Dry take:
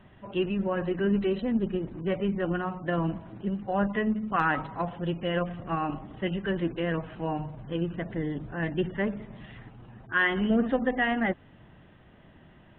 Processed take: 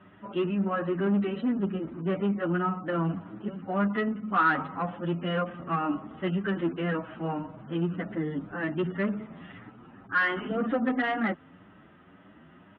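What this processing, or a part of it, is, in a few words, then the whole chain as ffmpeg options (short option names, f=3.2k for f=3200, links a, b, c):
barber-pole flanger into a guitar amplifier: -filter_complex "[0:a]asplit=2[a][b];[b]adelay=8.2,afreqshift=1.9[c];[a][c]amix=inputs=2:normalize=1,asoftclip=type=tanh:threshold=-24dB,highpass=100,equalizer=f=130:t=q:w=4:g=-8,equalizer=f=180:t=q:w=4:g=4,equalizer=f=280:t=q:w=4:g=6,equalizer=f=1.3k:t=q:w=4:g=10,lowpass=f=3.5k:w=0.5412,lowpass=f=3.5k:w=1.3066,volume=2.5dB"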